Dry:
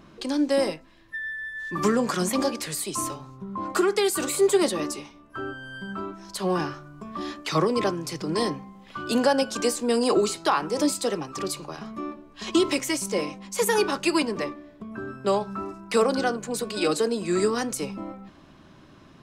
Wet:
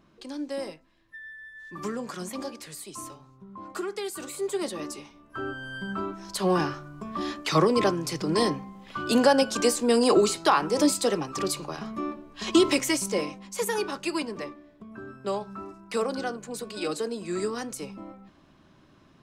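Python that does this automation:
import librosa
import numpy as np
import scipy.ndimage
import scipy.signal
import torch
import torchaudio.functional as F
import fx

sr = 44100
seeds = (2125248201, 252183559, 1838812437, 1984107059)

y = fx.gain(x, sr, db=fx.line((4.42, -10.5), (5.61, 1.5), (12.88, 1.5), (13.8, -6.5)))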